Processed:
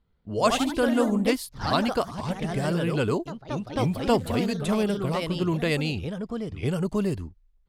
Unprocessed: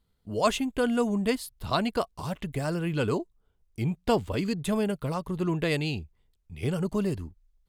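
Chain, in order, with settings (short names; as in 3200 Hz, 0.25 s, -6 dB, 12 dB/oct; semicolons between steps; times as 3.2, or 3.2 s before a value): echoes that change speed 0.128 s, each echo +2 st, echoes 3, each echo -6 dB; low-pass opened by the level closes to 2600 Hz, open at -24 dBFS; gain +2 dB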